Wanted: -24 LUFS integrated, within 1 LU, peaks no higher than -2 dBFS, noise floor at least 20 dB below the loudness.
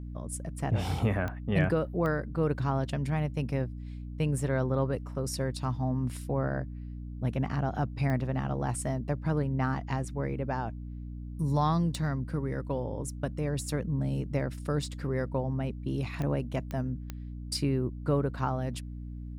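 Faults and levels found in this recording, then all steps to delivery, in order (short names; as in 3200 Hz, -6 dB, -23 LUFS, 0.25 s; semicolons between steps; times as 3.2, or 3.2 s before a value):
clicks 7; hum 60 Hz; harmonics up to 300 Hz; hum level -37 dBFS; loudness -31.5 LUFS; peak -12.5 dBFS; loudness target -24.0 LUFS
-> de-click; notches 60/120/180/240/300 Hz; gain +7.5 dB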